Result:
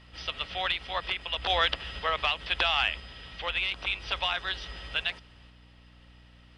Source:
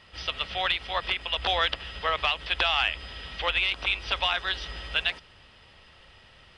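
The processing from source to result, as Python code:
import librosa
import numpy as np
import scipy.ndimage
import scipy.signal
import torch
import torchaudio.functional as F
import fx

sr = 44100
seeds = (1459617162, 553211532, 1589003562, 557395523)

y = fx.tremolo_random(x, sr, seeds[0], hz=2.0, depth_pct=55)
y = fx.add_hum(y, sr, base_hz=60, snr_db=23)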